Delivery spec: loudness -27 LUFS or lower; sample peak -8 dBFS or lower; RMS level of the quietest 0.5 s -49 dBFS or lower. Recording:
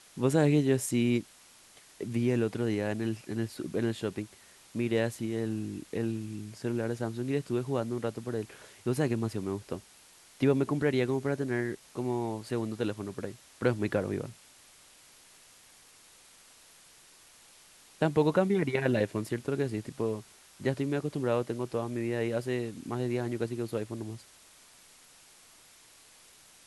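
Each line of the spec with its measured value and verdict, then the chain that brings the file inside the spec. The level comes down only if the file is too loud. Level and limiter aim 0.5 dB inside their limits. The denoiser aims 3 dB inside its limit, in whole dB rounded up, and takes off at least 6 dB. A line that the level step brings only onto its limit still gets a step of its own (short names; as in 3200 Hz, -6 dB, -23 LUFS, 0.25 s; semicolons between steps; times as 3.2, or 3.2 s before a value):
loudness -31.5 LUFS: OK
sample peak -12.5 dBFS: OK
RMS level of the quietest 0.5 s -57 dBFS: OK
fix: none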